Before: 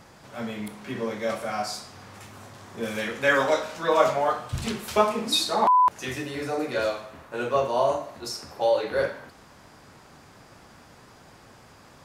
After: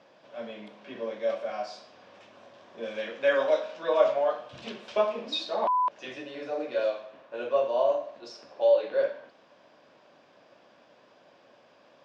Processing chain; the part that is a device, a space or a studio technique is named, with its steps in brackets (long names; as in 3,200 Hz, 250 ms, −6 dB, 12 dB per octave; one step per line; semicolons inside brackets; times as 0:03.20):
phone earpiece (loudspeaker in its box 340–4,500 Hz, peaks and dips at 410 Hz −4 dB, 580 Hz +7 dB, 840 Hz −6 dB, 1,300 Hz −8 dB, 2,000 Hz −7 dB, 4,300 Hz −6 dB)
0:04.97–0:06.05: low-pass filter 8,400 Hz 12 dB per octave
level −3.5 dB